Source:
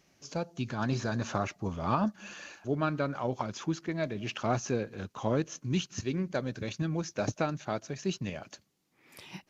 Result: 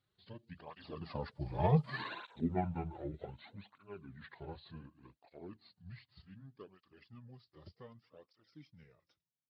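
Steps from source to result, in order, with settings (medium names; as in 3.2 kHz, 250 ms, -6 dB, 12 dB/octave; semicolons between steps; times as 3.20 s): pitch bend over the whole clip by -10 st ending unshifted; Doppler pass-by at 1.99 s, 50 m/s, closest 9.2 m; cancelling through-zero flanger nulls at 0.66 Hz, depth 4.7 ms; trim +8 dB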